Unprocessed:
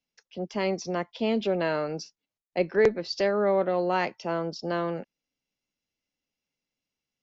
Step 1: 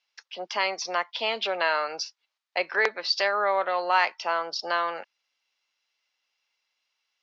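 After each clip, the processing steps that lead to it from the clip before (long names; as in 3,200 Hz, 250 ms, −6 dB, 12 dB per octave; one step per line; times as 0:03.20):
Chebyshev band-pass filter 990–4,700 Hz, order 2
in parallel at +0.5 dB: downward compressor, threshold −41 dBFS, peak gain reduction 15 dB
on the sum: level +6.5 dB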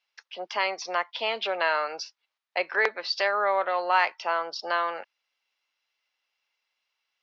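bass and treble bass −6 dB, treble −6 dB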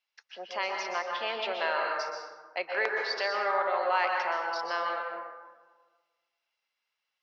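dense smooth reverb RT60 1.4 s, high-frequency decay 0.45×, pre-delay 110 ms, DRR 0.5 dB
level −6 dB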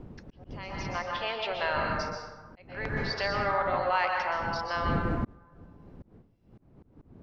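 wind on the microphone 220 Hz −35 dBFS
volume swells 653 ms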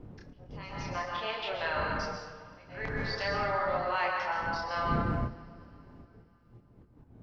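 multi-voice chorus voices 2, 0.3 Hz, delay 29 ms, depth 3.7 ms
coupled-rooms reverb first 0.23 s, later 3.2 s, from −18 dB, DRR 8 dB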